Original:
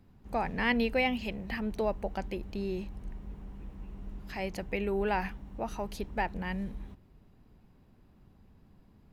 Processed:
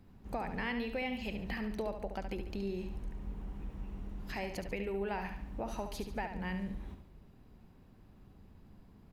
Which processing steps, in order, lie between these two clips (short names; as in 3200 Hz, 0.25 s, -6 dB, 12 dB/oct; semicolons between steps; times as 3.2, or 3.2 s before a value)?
compressor 4:1, threshold -37 dBFS, peak gain reduction 11.5 dB; feedback echo 71 ms, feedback 44%, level -8 dB; gain +1 dB